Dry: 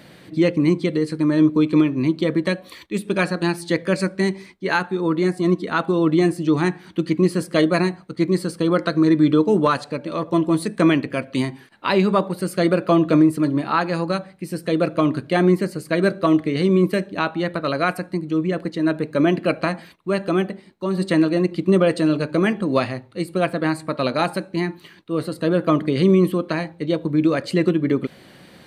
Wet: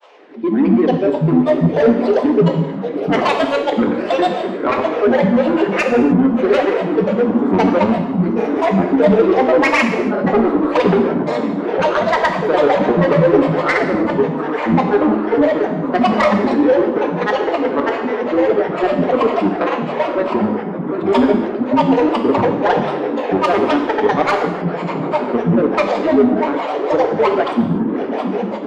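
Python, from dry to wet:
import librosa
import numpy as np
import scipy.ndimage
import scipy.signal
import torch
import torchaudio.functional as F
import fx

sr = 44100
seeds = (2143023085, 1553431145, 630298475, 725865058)

p1 = scipy.signal.sosfilt(scipy.signal.butter(6, 290.0, 'highpass', fs=sr, output='sos'), x)
p2 = fx.level_steps(p1, sr, step_db=23)
p3 = p1 + F.gain(torch.from_numpy(p2), 0.0).numpy()
p4 = fx.mod_noise(p3, sr, seeds[0], snr_db=24)
p5 = scipy.signal.sosfilt(scipy.signal.butter(2, 1400.0, 'lowpass', fs=sr, output='sos'), p4)
p6 = fx.echo_diffused(p5, sr, ms=852, feedback_pct=71, wet_db=-10)
p7 = fx.granulator(p6, sr, seeds[1], grain_ms=100.0, per_s=20.0, spray_ms=100.0, spread_st=12)
p8 = 10.0 ** (-13.0 / 20.0) * np.tanh(p7 / 10.0 ** (-13.0 / 20.0))
p9 = fx.rev_gated(p8, sr, seeds[2], gate_ms=330, shape='falling', drr_db=4.0)
y = F.gain(torch.from_numpy(p9), 4.5).numpy()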